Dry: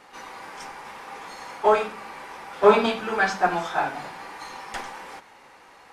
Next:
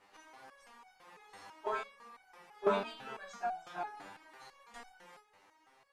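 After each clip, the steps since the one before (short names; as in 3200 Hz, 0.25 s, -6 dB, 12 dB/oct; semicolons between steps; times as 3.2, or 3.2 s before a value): stepped resonator 6 Hz 99–750 Hz; gain -4 dB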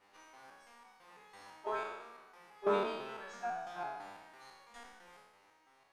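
spectral trails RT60 1.17 s; notch 7400 Hz, Q 23; gain -3.5 dB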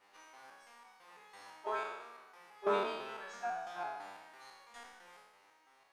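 low shelf 300 Hz -9 dB; gain +1.5 dB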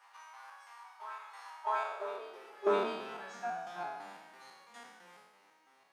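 reverse echo 0.652 s -12.5 dB; high-pass sweep 990 Hz -> 180 Hz, 1.56–3.08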